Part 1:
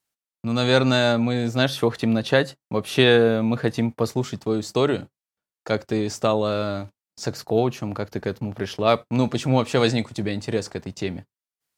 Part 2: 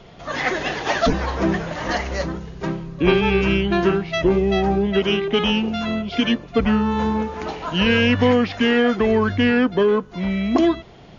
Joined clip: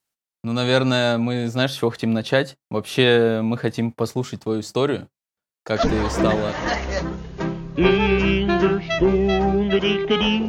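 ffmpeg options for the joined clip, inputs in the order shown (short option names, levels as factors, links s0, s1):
-filter_complex "[0:a]apad=whole_dur=10.48,atrim=end=10.48,atrim=end=6.52,asetpts=PTS-STARTPTS[s0];[1:a]atrim=start=0.99:end=5.71,asetpts=PTS-STARTPTS[s1];[s0][s1]acrossfade=d=0.76:c1=log:c2=log"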